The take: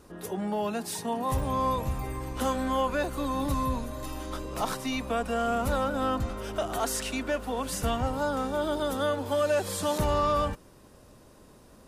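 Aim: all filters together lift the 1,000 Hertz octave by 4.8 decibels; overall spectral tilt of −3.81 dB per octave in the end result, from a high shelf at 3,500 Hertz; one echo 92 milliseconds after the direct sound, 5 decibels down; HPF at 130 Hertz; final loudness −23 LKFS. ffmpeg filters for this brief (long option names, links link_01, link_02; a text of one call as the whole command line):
ffmpeg -i in.wav -af "highpass=130,equalizer=frequency=1000:width_type=o:gain=5,highshelf=frequency=3500:gain=8.5,aecho=1:1:92:0.562,volume=2.5dB" out.wav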